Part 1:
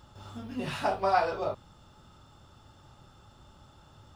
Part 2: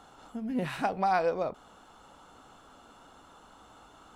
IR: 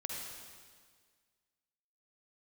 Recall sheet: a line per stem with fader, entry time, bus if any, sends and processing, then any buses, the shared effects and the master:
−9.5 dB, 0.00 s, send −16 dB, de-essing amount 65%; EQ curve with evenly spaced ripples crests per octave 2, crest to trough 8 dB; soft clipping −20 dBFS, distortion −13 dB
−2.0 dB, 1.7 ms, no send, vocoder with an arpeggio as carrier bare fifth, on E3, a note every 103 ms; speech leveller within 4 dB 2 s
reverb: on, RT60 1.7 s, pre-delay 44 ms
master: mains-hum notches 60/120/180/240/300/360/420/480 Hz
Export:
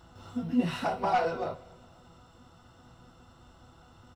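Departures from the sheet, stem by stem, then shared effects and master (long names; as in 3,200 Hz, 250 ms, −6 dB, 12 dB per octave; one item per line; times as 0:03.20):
stem 1 −9.5 dB → −3.0 dB
master: missing mains-hum notches 60/120/180/240/300/360/420/480 Hz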